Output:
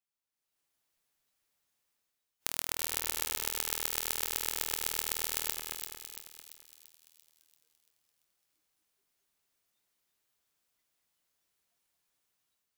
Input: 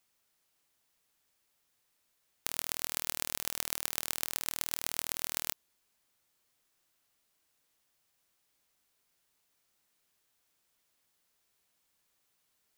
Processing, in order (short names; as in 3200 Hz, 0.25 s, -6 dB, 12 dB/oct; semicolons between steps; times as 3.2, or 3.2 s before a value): spectral noise reduction 17 dB; AGC gain up to 13 dB; split-band echo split 2600 Hz, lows 0.225 s, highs 0.34 s, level -5.5 dB; gain -1.5 dB